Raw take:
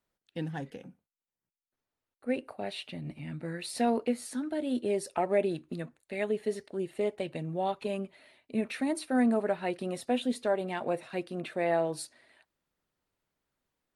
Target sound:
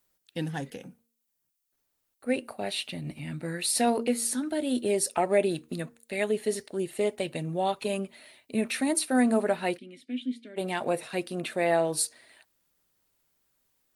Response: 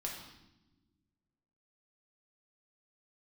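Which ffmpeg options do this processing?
-filter_complex "[0:a]asplit=3[s0][s1][s2];[s0]afade=t=out:st=9.77:d=0.02[s3];[s1]asplit=3[s4][s5][s6];[s4]bandpass=f=270:t=q:w=8,volume=1[s7];[s5]bandpass=f=2290:t=q:w=8,volume=0.501[s8];[s6]bandpass=f=3010:t=q:w=8,volume=0.355[s9];[s7][s8][s9]amix=inputs=3:normalize=0,afade=t=in:st=9.77:d=0.02,afade=t=out:st=10.56:d=0.02[s10];[s2]afade=t=in:st=10.56:d=0.02[s11];[s3][s10][s11]amix=inputs=3:normalize=0,bandreject=f=232.1:t=h:w=4,bandreject=f=464.2:t=h:w=4,crystalizer=i=2.5:c=0,volume=1.41"

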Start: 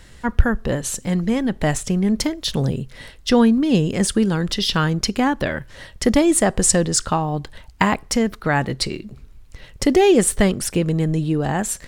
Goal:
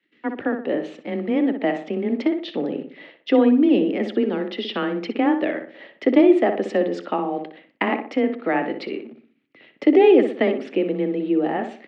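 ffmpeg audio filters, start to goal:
-filter_complex "[0:a]agate=range=0.126:threshold=0.00794:ratio=16:detection=peak,acrossover=split=370|1200[s0][s1][s2];[s1]acrusher=bits=7:mix=0:aa=0.000001[s3];[s0][s3][s2]amix=inputs=3:normalize=0,highpass=f=250:w=0.5412,highpass=f=250:w=1.3066,equalizer=f=290:t=q:w=4:g=4,equalizer=f=1000:t=q:w=4:g=-10,equalizer=f=1500:t=q:w=4:g=-9,lowpass=f=2700:w=0.5412,lowpass=f=2700:w=1.3066,afreqshift=19,asplit=2[s4][s5];[s5]adelay=61,lowpass=f=2000:p=1,volume=0.473,asplit=2[s6][s7];[s7]adelay=61,lowpass=f=2000:p=1,volume=0.42,asplit=2[s8][s9];[s9]adelay=61,lowpass=f=2000:p=1,volume=0.42,asplit=2[s10][s11];[s11]adelay=61,lowpass=f=2000:p=1,volume=0.42,asplit=2[s12][s13];[s13]adelay=61,lowpass=f=2000:p=1,volume=0.42[s14];[s4][s6][s8][s10][s12][s14]amix=inputs=6:normalize=0"

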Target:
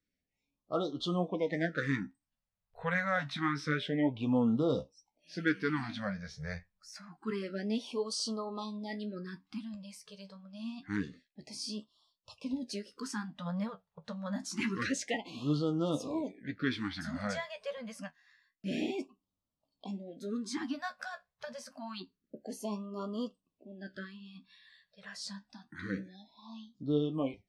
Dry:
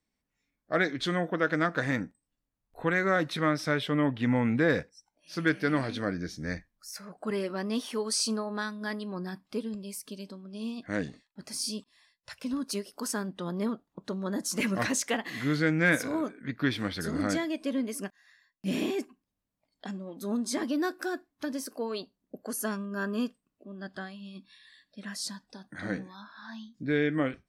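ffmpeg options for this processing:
-af "flanger=delay=9.7:depth=5.9:regen=46:speed=0.73:shape=triangular,lowpass=5800,afftfilt=real='re*(1-between(b*sr/1024,290*pow(2000/290,0.5+0.5*sin(2*PI*0.27*pts/sr))/1.41,290*pow(2000/290,0.5+0.5*sin(2*PI*0.27*pts/sr))*1.41))':imag='im*(1-between(b*sr/1024,290*pow(2000/290,0.5+0.5*sin(2*PI*0.27*pts/sr))/1.41,290*pow(2000/290,0.5+0.5*sin(2*PI*0.27*pts/sr))*1.41))':win_size=1024:overlap=0.75"

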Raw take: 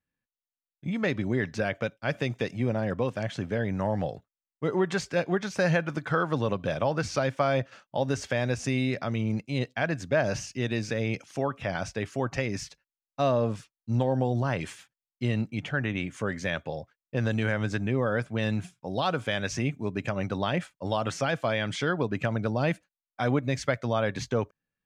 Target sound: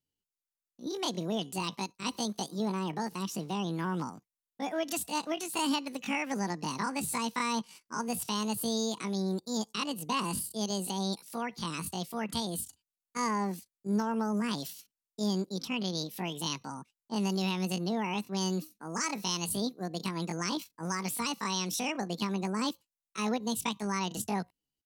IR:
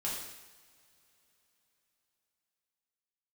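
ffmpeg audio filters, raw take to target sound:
-af "asetrate=76340,aresample=44100,atempo=0.577676,bass=f=250:g=9,treble=f=4000:g=12,volume=0.398"

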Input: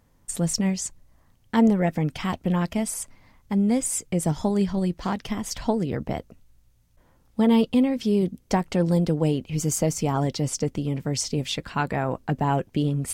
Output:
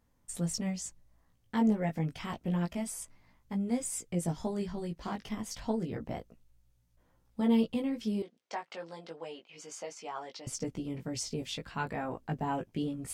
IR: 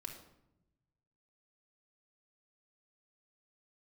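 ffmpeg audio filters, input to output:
-filter_complex "[0:a]flanger=delay=16.5:depth=2.1:speed=0.29,asettb=1/sr,asplit=3[s0][s1][s2];[s0]atrim=end=8.224[s3];[s1]atrim=start=8.22:end=10.47,asetpts=PTS-STARTPTS,afade=t=in:d=0.004:c=qsin,afade=t=out:st=2.246:d=0.004:c=qsin,highpass=720,lowpass=4700[s4];[s2]atrim=start=10.466[s5];[s3][s4]acrossfade=d=0.004:c1=hsin:c2=qsin[s6];[s6][s5]acrossfade=d=0.004:c1=qsin:c2=hsin,volume=0.473"

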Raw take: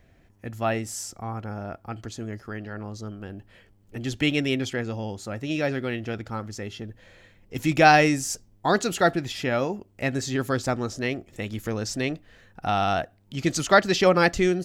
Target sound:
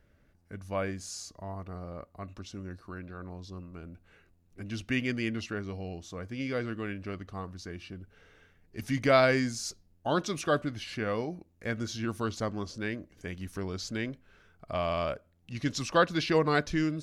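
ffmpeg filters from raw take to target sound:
-af "asetrate=37926,aresample=44100,volume=0.447"

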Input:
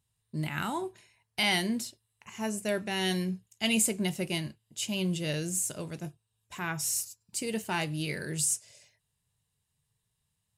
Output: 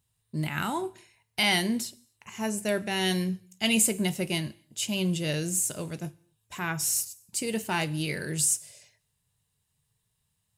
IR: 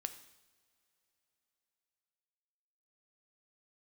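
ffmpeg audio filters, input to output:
-filter_complex "[0:a]asplit=2[s0][s1];[1:a]atrim=start_sample=2205,afade=t=out:st=0.33:d=0.01,atrim=end_sample=14994,highshelf=f=11000:g=12[s2];[s1][s2]afir=irnorm=-1:irlink=0,volume=0.473[s3];[s0][s3]amix=inputs=2:normalize=0"

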